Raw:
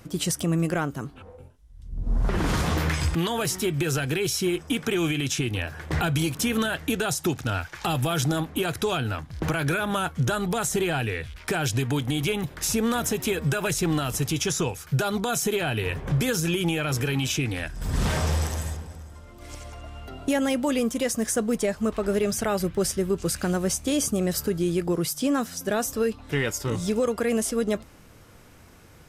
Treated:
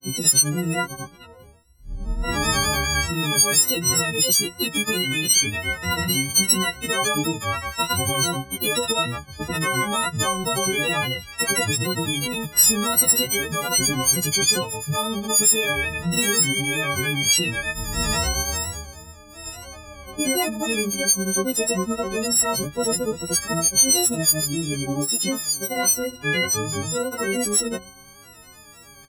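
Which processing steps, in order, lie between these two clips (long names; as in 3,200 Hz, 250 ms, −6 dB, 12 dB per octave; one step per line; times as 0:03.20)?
every partial snapped to a pitch grid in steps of 6 semitones
granular cloud 197 ms, grains 10 per second, pitch spread up and down by 3 semitones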